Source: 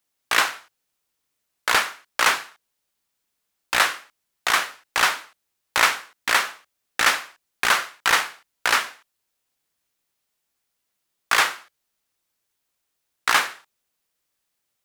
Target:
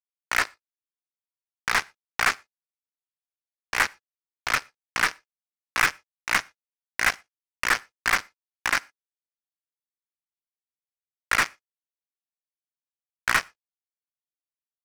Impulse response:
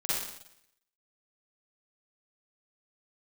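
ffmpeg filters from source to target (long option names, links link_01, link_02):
-filter_complex "[0:a]highpass=frequency=370:width_type=q:width=0.5412,highpass=frequency=370:width_type=q:width=1.307,lowpass=frequency=2300:width_type=q:width=0.5176,lowpass=frequency=2300:width_type=q:width=0.7071,lowpass=frequency=2300:width_type=q:width=1.932,afreqshift=230,acrusher=bits=2:mix=0:aa=0.5,asplit=2[link_01][link_02];[1:a]atrim=start_sample=2205,afade=type=out:start_time=0.17:duration=0.01,atrim=end_sample=7938[link_03];[link_02][link_03]afir=irnorm=-1:irlink=0,volume=-31dB[link_04];[link_01][link_04]amix=inputs=2:normalize=0,aeval=exprs='0.708*(cos(1*acos(clip(val(0)/0.708,-1,1)))-cos(1*PI/2))+0.282*(cos(2*acos(clip(val(0)/0.708,-1,1)))-cos(2*PI/2))+0.126*(cos(4*acos(clip(val(0)/0.708,-1,1)))-cos(4*PI/2))':channel_layout=same,volume=-2.5dB"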